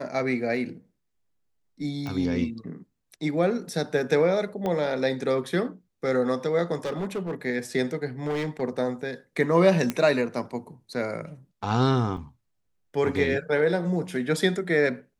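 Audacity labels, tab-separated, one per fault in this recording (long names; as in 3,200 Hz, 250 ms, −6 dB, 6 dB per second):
2.070000	2.070000	click −21 dBFS
4.660000	4.660000	click −17 dBFS
6.750000	7.350000	clipping −25.5 dBFS
8.230000	8.620000	clipping −24.5 dBFS
9.900000	9.900000	click −12 dBFS
12.170000	12.170000	drop-out 3.1 ms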